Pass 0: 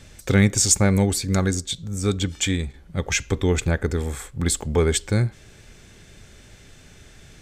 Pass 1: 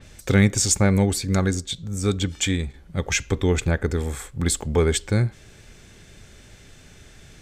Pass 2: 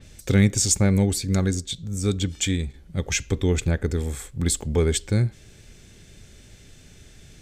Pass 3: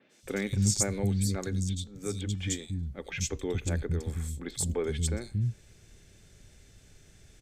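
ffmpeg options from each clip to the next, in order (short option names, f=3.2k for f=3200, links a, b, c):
-af "adynamicequalizer=threshold=0.0141:dfrequency=4500:dqfactor=0.7:tfrequency=4500:tqfactor=0.7:attack=5:release=100:ratio=0.375:range=3:mode=cutabove:tftype=highshelf"
-af "equalizer=f=1.1k:t=o:w=2:g=-7"
-filter_complex "[0:a]acrossover=split=230|3100[a][b][c];[c]adelay=90[d];[a]adelay=230[e];[e][b][d]amix=inputs=3:normalize=0,volume=-7dB"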